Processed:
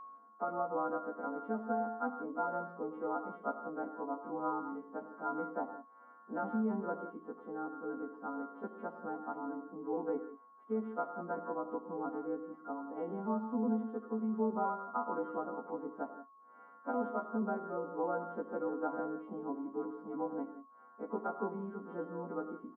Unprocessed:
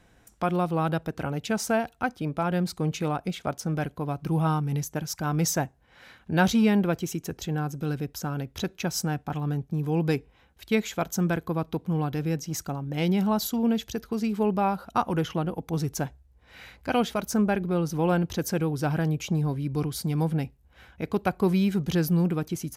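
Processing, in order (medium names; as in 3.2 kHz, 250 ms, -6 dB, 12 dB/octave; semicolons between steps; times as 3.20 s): partials quantised in pitch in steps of 2 st; comb 4.2 ms, depth 65%; peak limiter -16 dBFS, peak gain reduction 10 dB; Chebyshev band-pass 230–1400 Hz, order 4; whistle 1.1 kHz -39 dBFS; on a send: reverberation, pre-delay 3 ms, DRR 6.5 dB; on the sum: trim -8 dB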